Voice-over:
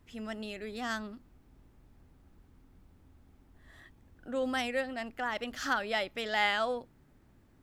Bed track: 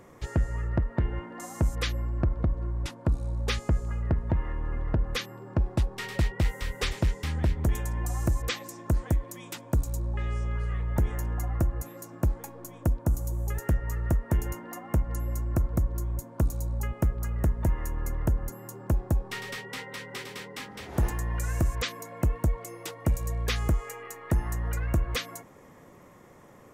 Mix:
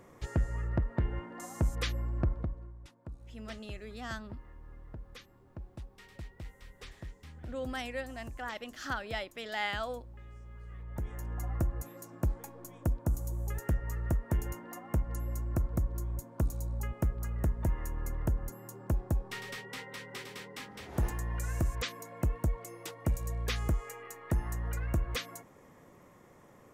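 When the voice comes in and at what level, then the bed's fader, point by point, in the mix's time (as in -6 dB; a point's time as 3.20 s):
3.20 s, -5.5 dB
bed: 2.29 s -4 dB
2.79 s -19.5 dB
10.48 s -19.5 dB
11.49 s -5 dB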